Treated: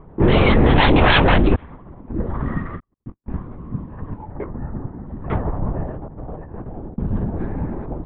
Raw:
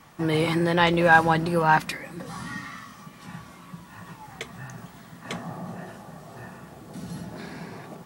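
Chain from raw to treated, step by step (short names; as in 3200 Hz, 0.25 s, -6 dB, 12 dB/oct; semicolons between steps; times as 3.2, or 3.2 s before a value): 1.55–2.09 room tone; 4.32–5.07 LPF 2100 Hz 24 dB/oct; low-pass opened by the level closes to 510 Hz, open at -18 dBFS; 2.79–3.38 gate -42 dBFS, range -58 dB; HPF 160 Hz 24 dB/oct; low shelf 220 Hz +11.5 dB; 5.99–6.99 negative-ratio compressor -43 dBFS, ratio -0.5; sine folder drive 13 dB, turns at -3 dBFS; LPC vocoder at 8 kHz whisper; gain -6 dB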